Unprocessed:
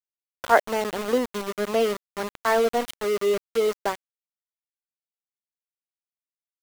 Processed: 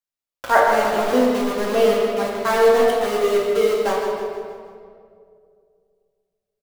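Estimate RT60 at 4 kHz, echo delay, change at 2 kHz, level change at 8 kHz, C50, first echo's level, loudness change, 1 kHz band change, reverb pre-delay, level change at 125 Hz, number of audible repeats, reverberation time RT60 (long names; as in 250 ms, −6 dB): 1.5 s, 157 ms, +5.0 dB, +3.5 dB, 0.0 dB, −7.5 dB, +6.0 dB, +6.0 dB, 4 ms, can't be measured, 1, 2.2 s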